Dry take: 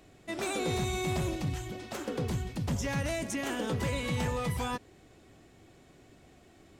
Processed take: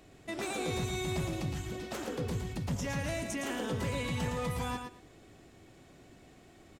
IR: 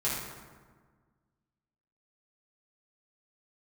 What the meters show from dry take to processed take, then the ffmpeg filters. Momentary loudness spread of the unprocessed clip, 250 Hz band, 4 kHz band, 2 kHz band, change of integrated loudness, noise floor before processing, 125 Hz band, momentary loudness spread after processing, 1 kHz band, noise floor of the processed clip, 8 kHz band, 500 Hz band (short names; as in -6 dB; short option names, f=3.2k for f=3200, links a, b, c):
6 LU, -2.0 dB, -2.0 dB, -2.0 dB, -2.0 dB, -59 dBFS, -2.5 dB, 5 LU, -2.5 dB, -58 dBFS, -2.0 dB, -2.0 dB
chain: -filter_complex "[0:a]alimiter=level_in=4.5dB:limit=-24dB:level=0:latency=1:release=204,volume=-4.5dB,asplit=2[a][b];[b]aecho=0:1:113|226|339:0.501|0.0852|0.0145[c];[a][c]amix=inputs=2:normalize=0"